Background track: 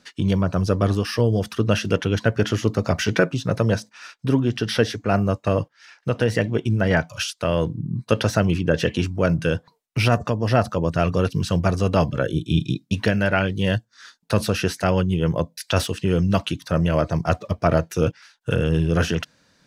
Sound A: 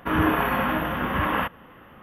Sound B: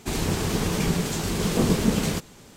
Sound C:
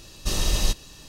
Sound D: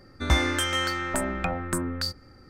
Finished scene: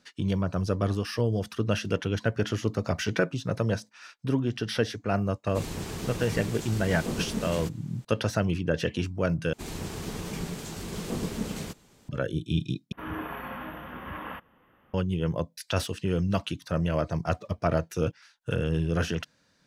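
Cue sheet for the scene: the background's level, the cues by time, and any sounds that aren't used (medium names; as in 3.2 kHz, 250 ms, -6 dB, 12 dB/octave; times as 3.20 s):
background track -7 dB
5.49 s: add B -10 dB
9.53 s: replace with B -10.5 dB
12.92 s: replace with A -14 dB
not used: C, D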